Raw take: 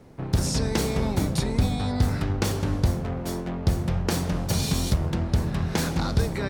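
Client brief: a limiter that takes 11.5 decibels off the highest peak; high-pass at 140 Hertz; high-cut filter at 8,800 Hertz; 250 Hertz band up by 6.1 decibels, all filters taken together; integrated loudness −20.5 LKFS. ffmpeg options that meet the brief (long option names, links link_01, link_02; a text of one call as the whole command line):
ffmpeg -i in.wav -af "highpass=140,lowpass=8800,equalizer=frequency=250:width_type=o:gain=9,volume=7.5dB,alimiter=limit=-11.5dB:level=0:latency=1" out.wav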